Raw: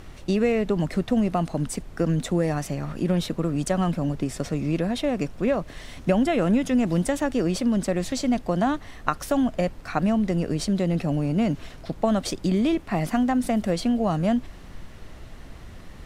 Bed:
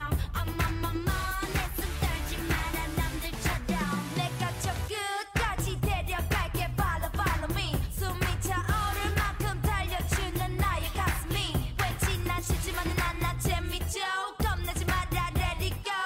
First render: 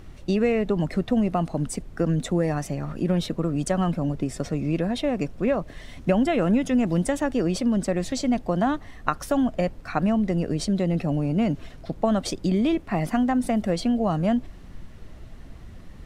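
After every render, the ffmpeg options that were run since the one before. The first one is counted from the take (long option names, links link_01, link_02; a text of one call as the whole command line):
ffmpeg -i in.wav -af "afftdn=noise_reduction=6:noise_floor=-43" out.wav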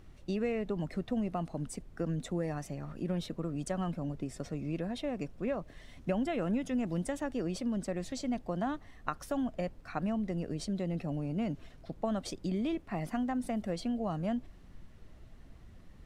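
ffmpeg -i in.wav -af "volume=-11dB" out.wav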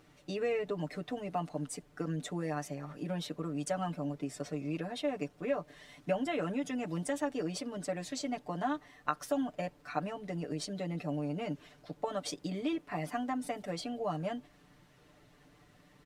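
ffmpeg -i in.wav -af "highpass=frequency=360:poles=1,aecho=1:1:6.8:0.96" out.wav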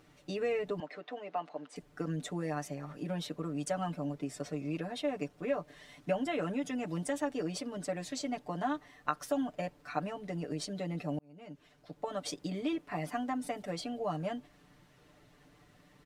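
ffmpeg -i in.wav -filter_complex "[0:a]asettb=1/sr,asplit=3[link_01][link_02][link_03];[link_01]atrim=end=0.804[link_04];[link_02]atrim=start=0.8:end=1.76,asetpts=PTS-STARTPTS,afade=type=in:duration=0.004:curve=qsin,afade=type=out:start_time=0.956:duration=0.004:curve=qsin,highpass=440,lowpass=3600[link_05];[link_03]atrim=start=1.756[link_06];[link_04][link_05]acrossfade=duration=0.004:curve1=hsin:curve2=qsin[link_07];[link_07][link_06]acrossfade=duration=0.004:curve1=qsin:curve2=hsin,asplit=2[link_08][link_09];[link_08]atrim=end=11.19,asetpts=PTS-STARTPTS,afade=type=out:start_time=11.186:duration=0.004:curve=hsin[link_10];[link_09]atrim=start=11.19,asetpts=PTS-STARTPTS,afade=type=in:duration=1.12[link_11];[link_10][link_11]concat=n=2:v=0:a=1" out.wav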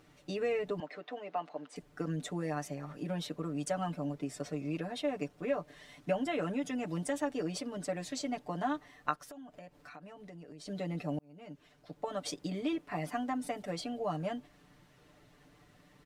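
ffmpeg -i in.wav -filter_complex "[0:a]asplit=3[link_01][link_02][link_03];[link_01]afade=type=out:start_time=9.15:duration=0.02[link_04];[link_02]acompressor=threshold=-48dB:ratio=5:attack=3.2:release=140:knee=1:detection=peak,afade=type=in:start_time=9.15:duration=0.02,afade=type=out:start_time=10.65:duration=0.02[link_05];[link_03]afade=type=in:start_time=10.65:duration=0.02[link_06];[link_04][link_05][link_06]amix=inputs=3:normalize=0" out.wav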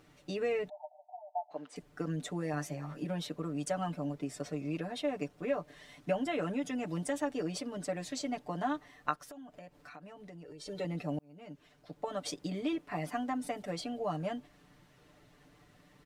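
ffmpeg -i in.wav -filter_complex "[0:a]asplit=3[link_01][link_02][link_03];[link_01]afade=type=out:start_time=0.68:duration=0.02[link_04];[link_02]asuperpass=centerf=750:order=20:qfactor=2.2,afade=type=in:start_time=0.68:duration=0.02,afade=type=out:start_time=1.5:duration=0.02[link_05];[link_03]afade=type=in:start_time=1.5:duration=0.02[link_06];[link_04][link_05][link_06]amix=inputs=3:normalize=0,asettb=1/sr,asplit=3[link_07][link_08][link_09];[link_07]atrim=end=2.524[link_10];[link_08]atrim=start=2.52:end=3.05,asetpts=PTS-STARTPTS,afade=type=in:duration=0.004:curve=qsin,afade=type=out:start_time=0.526:duration=0.004:curve=qsin,asplit=2[link_11][link_12];[link_12]adelay=13,volume=-5dB[link_13];[link_11][link_13]amix=inputs=2:normalize=0,atrim=end_sample=23373[link_14];[link_09]atrim=start=3.046[link_15];[link_10][link_14]acrossfade=duration=0.004:curve1=hsin:curve2=qsin[link_16];[link_16][link_15]acrossfade=duration=0.004:curve1=qsin:curve2=hsin,asettb=1/sr,asplit=3[link_17][link_18][link_19];[link_17]atrim=end=10.454[link_20];[link_18]atrim=start=10.45:end=10.85,asetpts=PTS-STARTPTS,afade=type=in:duration=0.004:curve=qsin,afade=type=out:start_time=0.396:duration=0.004:curve=qsin,aecho=1:1:2.2:0.73,atrim=end_sample=17640[link_21];[link_19]atrim=start=10.846[link_22];[link_20][link_21]acrossfade=duration=0.004:curve1=hsin:curve2=qsin[link_23];[link_23][link_22]acrossfade=duration=0.004:curve1=qsin:curve2=hsin" out.wav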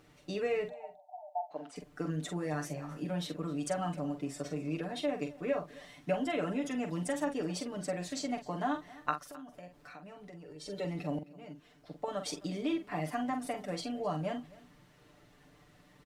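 ffmpeg -i in.wav -filter_complex "[0:a]asplit=2[link_01][link_02];[link_02]adelay=45,volume=-8dB[link_03];[link_01][link_03]amix=inputs=2:normalize=0,aecho=1:1:262:0.0891" out.wav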